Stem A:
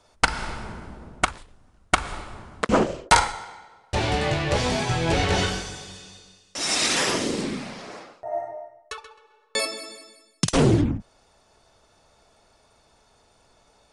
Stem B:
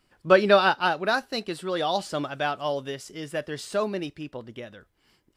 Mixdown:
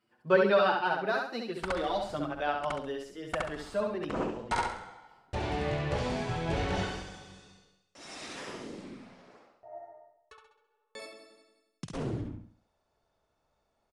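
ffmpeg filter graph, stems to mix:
ffmpeg -i stem1.wav -i stem2.wav -filter_complex "[0:a]adelay=1400,volume=-9dB,afade=type=out:start_time=7.43:duration=0.39:silence=0.398107,asplit=2[link_01][link_02];[link_02]volume=-6dB[link_03];[1:a]highpass=140,asplit=2[link_04][link_05];[link_05]adelay=6.5,afreqshift=1.6[link_06];[link_04][link_06]amix=inputs=2:normalize=1,volume=-3dB,asplit=3[link_07][link_08][link_09];[link_08]volume=-3.5dB[link_10];[link_09]apad=whole_len=675648[link_11];[link_01][link_11]sidechaincompress=threshold=-45dB:ratio=5:attack=9.9:release=390[link_12];[link_03][link_10]amix=inputs=2:normalize=0,aecho=0:1:68|136|204|272|340:1|0.35|0.122|0.0429|0.015[link_13];[link_12][link_07][link_13]amix=inputs=3:normalize=0,highshelf=frequency=3300:gain=-10.5" out.wav

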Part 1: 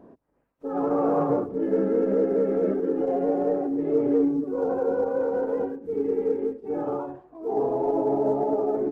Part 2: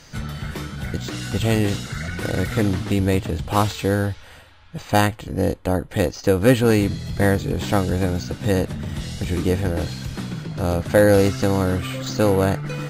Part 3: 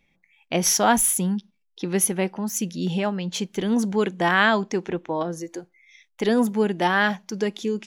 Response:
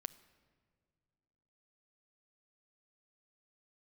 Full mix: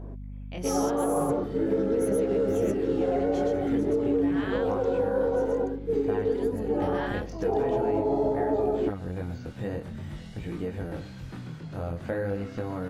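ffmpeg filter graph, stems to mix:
-filter_complex "[0:a]aeval=exprs='val(0)+0.01*(sin(2*PI*50*n/s)+sin(2*PI*2*50*n/s)/2+sin(2*PI*3*50*n/s)/3+sin(2*PI*4*50*n/s)/4+sin(2*PI*5*50*n/s)/5)':channel_layout=same,volume=2.5dB[link_01];[1:a]acrossover=split=2800[link_02][link_03];[link_03]acompressor=threshold=-49dB:ratio=4:attack=1:release=60[link_04];[link_02][link_04]amix=inputs=2:normalize=0,adelay=1150,volume=-7dB,asplit=2[link_05][link_06];[link_06]volume=-20.5dB[link_07];[2:a]volume=-13dB,asplit=2[link_08][link_09];[link_09]volume=-5dB[link_10];[link_05][link_08]amix=inputs=2:normalize=0,flanger=delay=17.5:depth=7.3:speed=0.47,acompressor=threshold=-29dB:ratio=2.5,volume=0dB[link_11];[link_07][link_10]amix=inputs=2:normalize=0,aecho=0:1:126:1[link_12];[link_01][link_11][link_12]amix=inputs=3:normalize=0,alimiter=limit=-17dB:level=0:latency=1:release=330"

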